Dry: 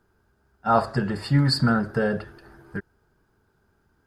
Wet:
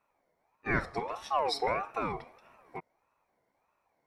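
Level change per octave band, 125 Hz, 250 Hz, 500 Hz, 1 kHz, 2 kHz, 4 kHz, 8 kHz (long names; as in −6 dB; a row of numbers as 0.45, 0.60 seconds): −20.0, −17.0, −7.5, −6.0, −5.0, −10.5, −8.0 decibels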